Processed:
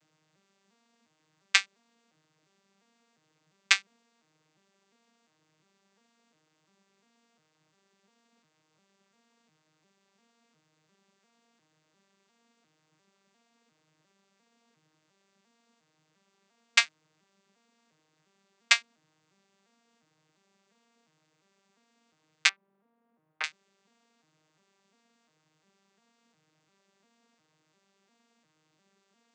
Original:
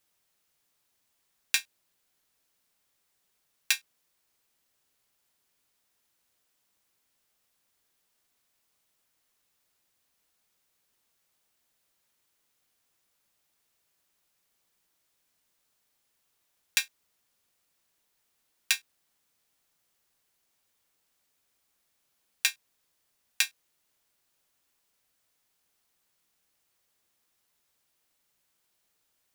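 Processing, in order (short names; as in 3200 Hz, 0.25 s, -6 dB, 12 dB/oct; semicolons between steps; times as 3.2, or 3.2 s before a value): arpeggiated vocoder major triad, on D#3, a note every 0.351 s; 22.49–23.44 LPF 1100 Hz 12 dB/oct; gain +5.5 dB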